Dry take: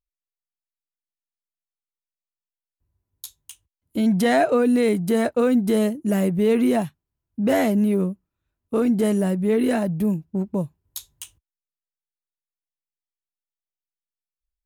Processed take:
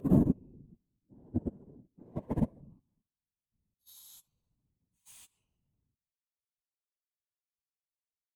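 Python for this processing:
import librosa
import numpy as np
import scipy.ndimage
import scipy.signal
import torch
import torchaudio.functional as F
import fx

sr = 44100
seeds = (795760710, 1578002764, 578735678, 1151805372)

y = fx.wiener(x, sr, points=25)
y = fx.dynamic_eq(y, sr, hz=250.0, q=1.3, threshold_db=-32.0, ratio=4.0, max_db=-5)
y = fx.paulstretch(y, sr, seeds[0], factor=7.8, window_s=0.1, from_s=10.06)
y = fx.level_steps(y, sr, step_db=23)
y = fx.whisperise(y, sr, seeds[1])
y = fx.stretch_vocoder_free(y, sr, factor=0.57)
y = fx.upward_expand(y, sr, threshold_db=-54.0, expansion=1.5)
y = F.gain(torch.from_numpy(y), 6.5).numpy()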